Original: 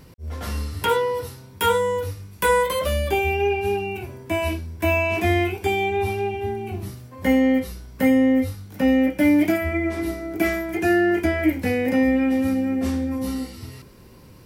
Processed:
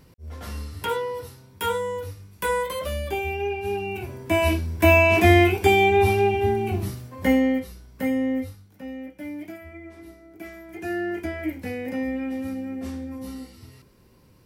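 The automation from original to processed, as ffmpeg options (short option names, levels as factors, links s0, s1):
-af "volume=5.01,afade=t=in:st=3.61:d=1.12:silence=0.281838,afade=t=out:st=6.64:d=1.03:silence=0.251189,afade=t=out:st=8.36:d=0.44:silence=0.281838,afade=t=in:st=10.52:d=0.49:silence=0.354813"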